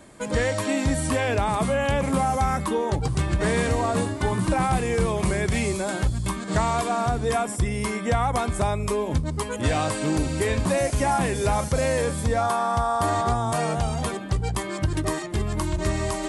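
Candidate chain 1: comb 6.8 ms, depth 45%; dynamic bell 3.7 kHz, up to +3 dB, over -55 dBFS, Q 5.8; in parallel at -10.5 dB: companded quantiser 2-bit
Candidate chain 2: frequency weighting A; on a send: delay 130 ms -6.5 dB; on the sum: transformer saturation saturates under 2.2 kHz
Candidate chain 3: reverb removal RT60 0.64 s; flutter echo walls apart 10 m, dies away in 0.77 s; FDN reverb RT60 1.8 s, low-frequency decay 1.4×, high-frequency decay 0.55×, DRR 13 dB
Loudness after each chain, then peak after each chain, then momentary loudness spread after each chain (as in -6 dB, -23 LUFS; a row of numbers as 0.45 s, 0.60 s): -22.0 LUFS, -29.0 LUFS, -24.0 LUFS; -4.5 dBFS, -12.5 dBFS, -10.5 dBFS; 4 LU, 7 LU, 4 LU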